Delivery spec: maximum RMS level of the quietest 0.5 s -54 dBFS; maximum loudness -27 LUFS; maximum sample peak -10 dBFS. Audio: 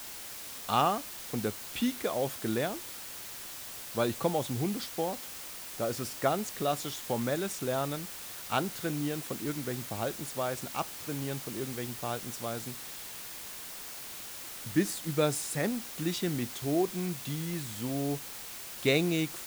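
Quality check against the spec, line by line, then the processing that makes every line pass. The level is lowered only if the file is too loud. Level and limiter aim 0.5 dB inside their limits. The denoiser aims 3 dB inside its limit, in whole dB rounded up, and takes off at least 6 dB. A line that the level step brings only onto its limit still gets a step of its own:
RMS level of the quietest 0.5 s -43 dBFS: fail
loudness -33.5 LUFS: OK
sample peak -11.5 dBFS: OK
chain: denoiser 14 dB, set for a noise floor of -43 dBFS

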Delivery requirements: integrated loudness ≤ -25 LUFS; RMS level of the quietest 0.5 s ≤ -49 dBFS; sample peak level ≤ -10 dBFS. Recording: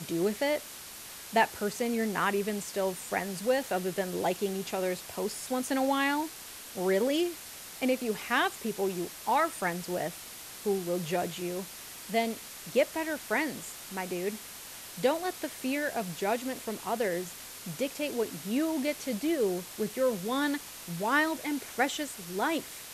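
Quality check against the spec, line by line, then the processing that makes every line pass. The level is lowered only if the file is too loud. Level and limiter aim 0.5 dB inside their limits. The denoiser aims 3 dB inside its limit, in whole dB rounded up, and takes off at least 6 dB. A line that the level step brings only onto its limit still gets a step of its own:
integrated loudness -31.5 LUFS: OK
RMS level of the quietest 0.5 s -45 dBFS: fail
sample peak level -12.5 dBFS: OK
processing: denoiser 7 dB, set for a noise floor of -45 dBFS

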